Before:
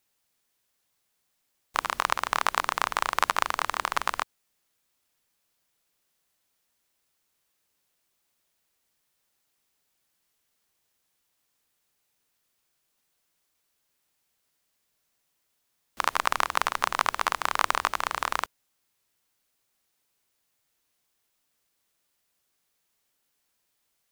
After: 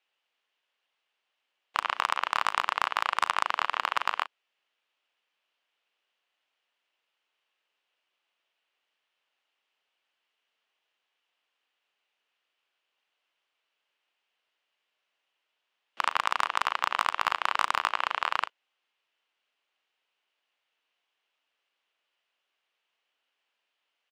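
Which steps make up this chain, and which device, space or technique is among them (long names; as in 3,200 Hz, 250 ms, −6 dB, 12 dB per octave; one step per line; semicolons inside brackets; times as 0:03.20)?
megaphone (band-pass filter 500–2,900 Hz; parametric band 2,900 Hz +9 dB 0.5 octaves; hard clipping −11 dBFS, distortion −13 dB; double-tracking delay 37 ms −13.5 dB)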